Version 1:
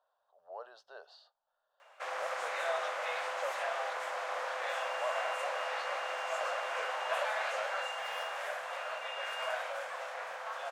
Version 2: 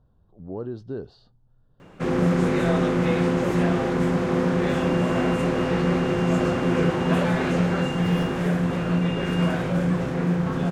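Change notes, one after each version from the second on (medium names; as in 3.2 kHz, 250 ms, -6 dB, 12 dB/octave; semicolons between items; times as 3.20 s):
background +5.0 dB; master: remove elliptic high-pass 600 Hz, stop band 50 dB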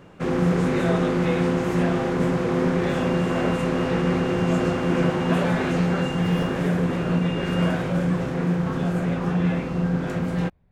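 speech: remove Butterworth band-stop 2.2 kHz, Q 1.4; background: entry -1.80 s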